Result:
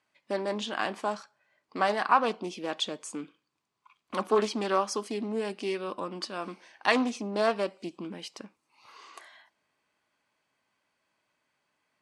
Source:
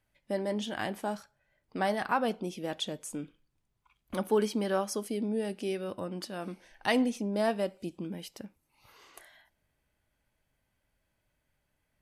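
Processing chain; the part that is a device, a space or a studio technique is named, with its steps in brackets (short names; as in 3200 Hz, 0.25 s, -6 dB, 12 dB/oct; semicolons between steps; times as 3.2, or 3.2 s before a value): full-range speaker at full volume (Doppler distortion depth 0.3 ms; speaker cabinet 270–8700 Hz, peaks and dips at 540 Hz -3 dB, 1100 Hz +9 dB, 2500 Hz +3 dB, 4500 Hz +4 dB); gain +3 dB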